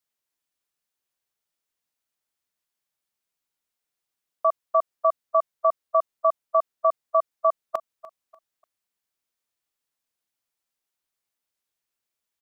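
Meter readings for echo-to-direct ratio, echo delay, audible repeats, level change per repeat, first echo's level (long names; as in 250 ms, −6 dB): −17.5 dB, 295 ms, 2, −10.0 dB, −18.0 dB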